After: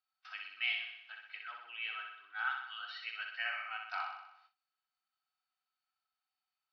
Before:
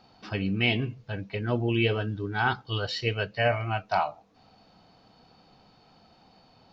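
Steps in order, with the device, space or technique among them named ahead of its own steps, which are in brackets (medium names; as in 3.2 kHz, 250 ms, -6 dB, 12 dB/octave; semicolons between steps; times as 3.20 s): 1.51–3.22 s: distance through air 190 m; flutter echo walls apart 10.7 m, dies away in 0.8 s; gate with hold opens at -34 dBFS; high-pass 1.4 kHz 24 dB/octave; inside a cardboard box (low-pass 4 kHz 12 dB/octave; small resonant body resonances 260/740/1300 Hz, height 11 dB, ringing for 35 ms); trim -8 dB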